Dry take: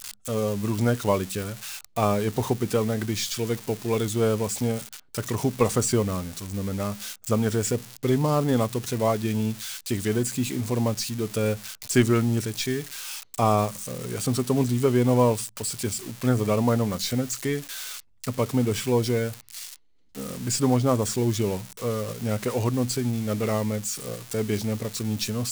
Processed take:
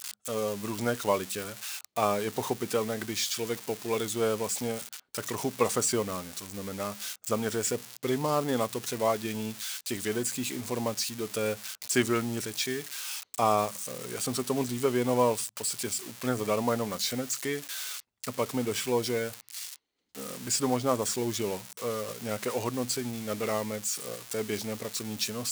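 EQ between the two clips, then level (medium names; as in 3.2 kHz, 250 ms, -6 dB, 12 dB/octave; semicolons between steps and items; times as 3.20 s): high-pass 470 Hz 6 dB/octave; -1.0 dB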